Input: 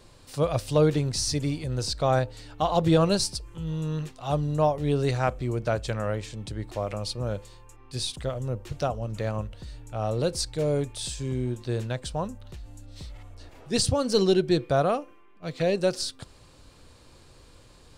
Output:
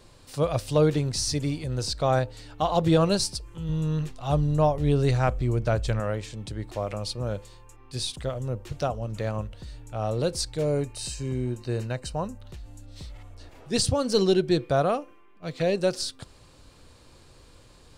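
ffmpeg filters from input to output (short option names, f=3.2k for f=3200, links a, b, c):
-filter_complex "[0:a]asettb=1/sr,asplit=3[a][b][c];[a]atrim=end=3.694[d];[b]atrim=start=3.69:end=6,asetpts=PTS-STARTPTS,afade=t=in:d=0.004:c=qsin,afade=t=out:st=2.306:d=0.004:c=qsin,lowshelf=f=96:g=12[e];[c]atrim=start=5.996[f];[d][e]acrossfade=d=0.004:c1=hsin:c2=qsin[g];[g][f]acrossfade=d=0.004:c1=qsin:c2=hsin,asettb=1/sr,asplit=3[h][i][j];[h]atrim=end=10.654[k];[i]atrim=start=10.65:end=12.41,asetpts=PTS-STARTPTS,afade=t=in:d=0.004:c=qsin,afade=t=out:st=1.756:d=0.004:c=qsin,asuperstop=centerf=3400:order=12:qfactor=7.1[l];[j]atrim=start=12.406[m];[k][l]acrossfade=d=0.004:c1=hsin:c2=qsin[n];[n][m]acrossfade=d=0.004:c1=qsin:c2=hsin"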